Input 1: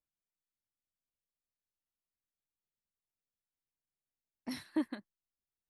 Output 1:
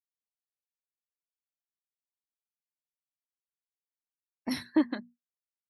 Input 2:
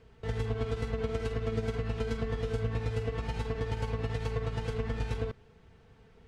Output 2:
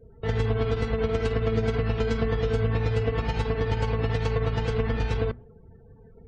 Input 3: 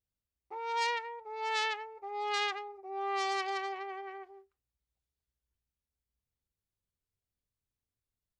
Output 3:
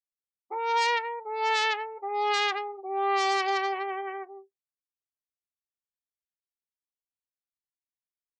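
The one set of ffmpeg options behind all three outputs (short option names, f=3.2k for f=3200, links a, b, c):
-filter_complex "[0:a]bandreject=f=60:t=h:w=6,bandreject=f=120:t=h:w=6,bandreject=f=180:t=h:w=6,bandreject=f=240:t=h:w=6,afftdn=nr=35:nf=-58,asplit=2[a][b];[b]alimiter=limit=-24dB:level=0:latency=1,volume=3dB[c];[a][c]amix=inputs=2:normalize=0,volume=1dB"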